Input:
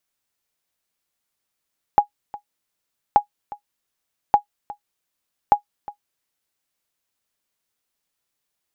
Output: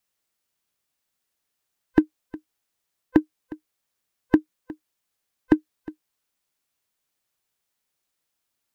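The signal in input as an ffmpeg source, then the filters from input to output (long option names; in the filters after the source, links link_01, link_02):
-f lavfi -i "aevalsrc='0.668*(sin(2*PI*825*mod(t,1.18))*exp(-6.91*mod(t,1.18)/0.1)+0.106*sin(2*PI*825*max(mod(t,1.18)-0.36,0))*exp(-6.91*max(mod(t,1.18)-0.36,0)/0.1))':duration=4.72:sample_rate=44100"
-af "afftfilt=real='real(if(lt(b,1008),b+24*(1-2*mod(floor(b/24),2)),b),0)':imag='imag(if(lt(b,1008),b+24*(1-2*mod(floor(b/24),2)),b),0)':win_size=2048:overlap=0.75"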